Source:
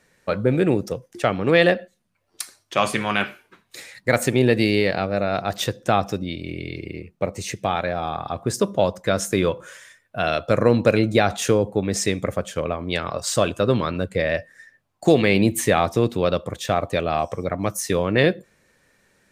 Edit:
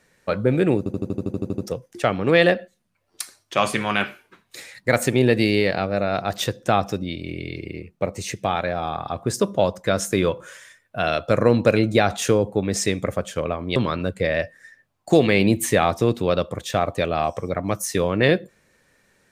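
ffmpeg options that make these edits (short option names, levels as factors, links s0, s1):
-filter_complex "[0:a]asplit=12[s0][s1][s2][s3][s4][s5][s6][s7][s8][s9][s10][s11];[s0]atrim=end=0.862[s12];[s1]atrim=start=0.778:end=0.862[s13];[s2]atrim=start=0.778:end=0.862[s14];[s3]atrim=start=0.778:end=0.862[s15];[s4]atrim=start=0.778:end=0.862[s16];[s5]atrim=start=0.778:end=0.862[s17];[s6]atrim=start=0.778:end=0.862[s18];[s7]atrim=start=0.778:end=0.862[s19];[s8]atrim=start=0.778:end=0.862[s20];[s9]atrim=start=0.778:end=0.862[s21];[s10]atrim=start=0.778:end=12.962[s22];[s11]atrim=start=13.708[s23];[s12][s13]acrossfade=d=0.004:c1=hsin:c2=hsin[s24];[s24][s14]acrossfade=d=0.004:c1=hsin:c2=hsin[s25];[s25][s15]acrossfade=d=0.004:c1=hsin:c2=hsin[s26];[s26][s16]acrossfade=d=0.004:c1=hsin:c2=hsin[s27];[s27][s17]acrossfade=d=0.004:c1=hsin:c2=hsin[s28];[s28][s18]acrossfade=d=0.004:c1=hsin:c2=hsin[s29];[s29][s19]acrossfade=d=0.004:c1=hsin:c2=hsin[s30];[s30][s20]acrossfade=d=0.004:c1=hsin:c2=hsin[s31];[s31][s21]acrossfade=d=0.004:c1=hsin:c2=hsin[s32];[s32][s22]acrossfade=d=0.004:c1=hsin:c2=hsin[s33];[s33][s23]acrossfade=d=0.004:c1=hsin:c2=hsin"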